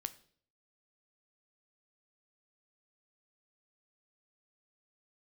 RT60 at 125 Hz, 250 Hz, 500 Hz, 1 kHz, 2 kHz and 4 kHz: 0.70, 0.60, 0.60, 0.45, 0.45, 0.50 s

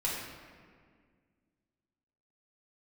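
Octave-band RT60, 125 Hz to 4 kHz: 2.4, 2.6, 2.0, 1.8, 1.7, 1.2 s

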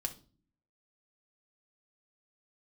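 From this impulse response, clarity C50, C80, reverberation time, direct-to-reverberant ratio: 14.5 dB, 21.5 dB, 0.40 s, 4.5 dB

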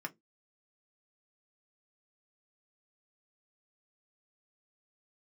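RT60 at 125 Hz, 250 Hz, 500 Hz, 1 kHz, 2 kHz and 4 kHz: 0.25, 0.25, 0.20, 0.10, 0.10, 0.10 s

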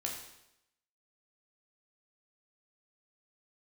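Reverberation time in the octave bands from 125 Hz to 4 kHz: 0.85, 0.85, 0.85, 0.85, 0.80, 0.80 s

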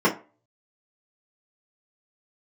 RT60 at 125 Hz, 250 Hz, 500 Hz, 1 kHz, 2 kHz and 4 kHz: 0.30, 0.30, 0.35, 0.35, 0.30, 0.20 s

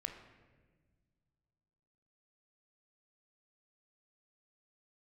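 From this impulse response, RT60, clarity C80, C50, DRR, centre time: 1.5 s, 9.5 dB, 7.5 dB, 5.0 dB, 25 ms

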